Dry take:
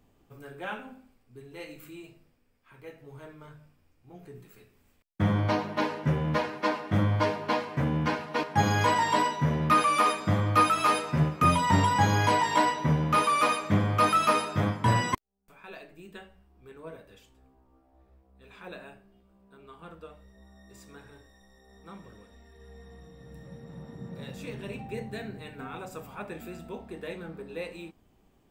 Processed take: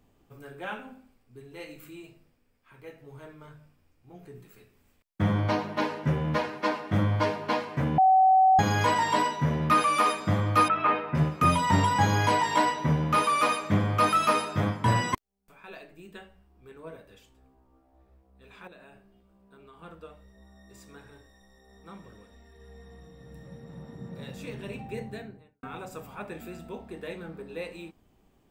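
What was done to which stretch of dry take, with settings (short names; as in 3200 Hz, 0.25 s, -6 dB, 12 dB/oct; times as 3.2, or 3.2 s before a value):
7.98–8.59 bleep 758 Hz -15.5 dBFS
10.68–11.15 LPF 2600 Hz 24 dB/oct
18.67–19.78 compressor 4:1, threshold -48 dBFS
25–25.63 studio fade out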